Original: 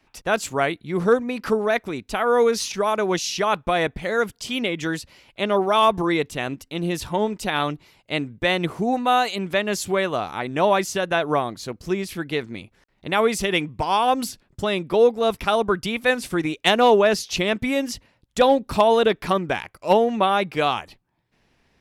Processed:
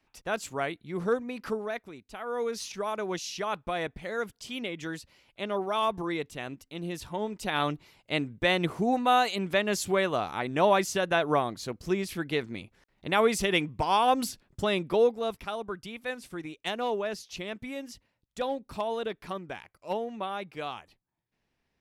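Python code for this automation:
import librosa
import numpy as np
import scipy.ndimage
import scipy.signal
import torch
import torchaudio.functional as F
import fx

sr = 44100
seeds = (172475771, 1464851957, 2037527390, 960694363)

y = fx.gain(x, sr, db=fx.line((1.46, -9.5), (2.05, -18.0), (2.67, -10.5), (7.2, -10.5), (7.66, -4.0), (14.85, -4.0), (15.55, -15.0)))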